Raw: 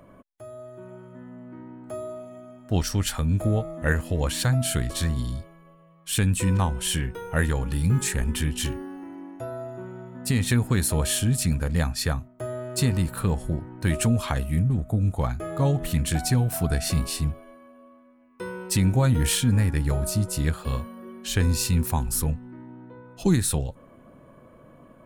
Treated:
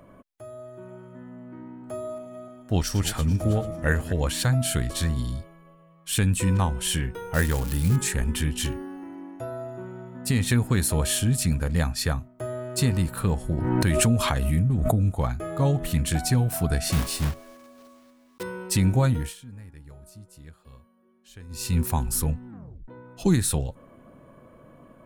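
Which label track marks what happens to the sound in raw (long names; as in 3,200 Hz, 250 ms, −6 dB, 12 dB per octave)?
1.380000	4.130000	feedback delay that plays each chunk backwards 220 ms, feedback 44%, level −13 dB
7.340000	7.960000	spike at every zero crossing of −21 dBFS
13.500000	15.080000	background raised ahead of every attack at most 25 dB per second
16.920000	18.450000	one scale factor per block 3 bits
19.040000	21.790000	duck −22 dB, fades 0.30 s
22.480000	22.480000	tape stop 0.40 s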